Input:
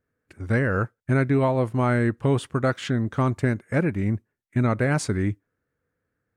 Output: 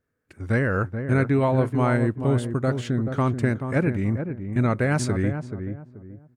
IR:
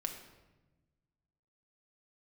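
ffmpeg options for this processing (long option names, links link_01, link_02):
-filter_complex "[0:a]asettb=1/sr,asplit=3[link_01][link_02][link_03];[link_01]atrim=end=1.974[link_04];[link_02]atrim=start=1.97:end=3.08,asetpts=PTS-STARTPTS,afade=type=in:duration=0.004:curve=qsin,afade=type=out:start_time=1.106:duration=0.004:curve=qsin,equalizer=frequency=1800:width_type=o:width=3:gain=-6[link_05];[link_03]atrim=start=3.076[link_06];[link_04][link_05]acrossfade=duration=0.004:curve1=hsin:curve2=qsin[link_07];[link_07][link_06]acrossfade=duration=0.004:curve1=qsin:curve2=hsin,asplit=2[link_08][link_09];[link_09]adelay=431,lowpass=frequency=930:poles=1,volume=-7dB,asplit=2[link_10][link_11];[link_11]adelay=431,lowpass=frequency=930:poles=1,volume=0.3,asplit=2[link_12][link_13];[link_13]adelay=431,lowpass=frequency=930:poles=1,volume=0.3,asplit=2[link_14][link_15];[link_15]adelay=431,lowpass=frequency=930:poles=1,volume=0.3[link_16];[link_08][link_10][link_12][link_14][link_16]amix=inputs=5:normalize=0"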